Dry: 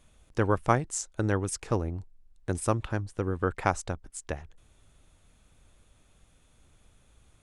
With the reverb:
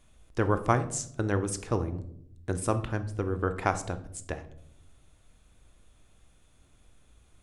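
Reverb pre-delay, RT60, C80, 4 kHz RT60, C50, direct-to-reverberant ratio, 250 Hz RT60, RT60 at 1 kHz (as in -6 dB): 3 ms, 0.70 s, 17.5 dB, 0.40 s, 13.5 dB, 9.0 dB, 1.2 s, 0.55 s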